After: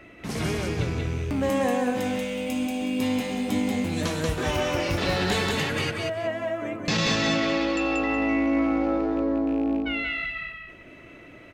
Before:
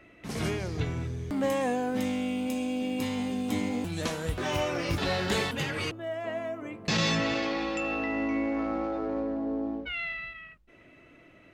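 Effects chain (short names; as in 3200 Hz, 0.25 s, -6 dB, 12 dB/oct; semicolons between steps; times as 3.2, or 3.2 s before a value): rattling part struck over -34 dBFS, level -37 dBFS; in parallel at +2 dB: compressor, threshold -39 dBFS, peak gain reduction 15 dB; on the sum: feedback echo 0.185 s, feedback 24%, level -3 dB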